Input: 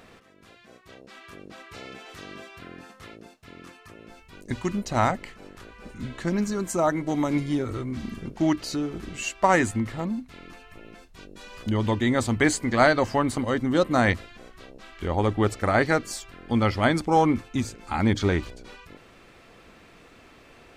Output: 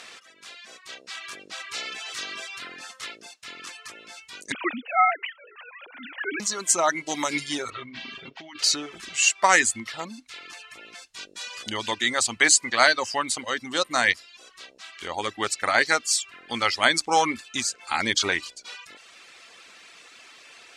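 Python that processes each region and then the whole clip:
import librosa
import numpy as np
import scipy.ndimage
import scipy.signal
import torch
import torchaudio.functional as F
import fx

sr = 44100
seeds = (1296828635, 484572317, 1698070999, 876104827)

y = fx.chain(x, sr, fx.sine_speech(),
    fx.peak_eq(hz=2100.0, db=3.0, octaves=1.8), at=(4.52, 6.4))
y = fx.chain(y, sr, fx.ladder_lowpass(hz=4000.0, resonance_pct=30),
    fx.comb(ms=7.4, depth=0.66),
    fx.over_compress(threshold_db=-35.0, ratio=-1.0), at=(7.7, 8.59))
y = fx.dereverb_blind(y, sr, rt60_s=0.66)
y = fx.weighting(y, sr, curve='ITU-R 468')
y = fx.rider(y, sr, range_db=4, speed_s=2.0)
y = y * 10.0 ** (1.0 / 20.0)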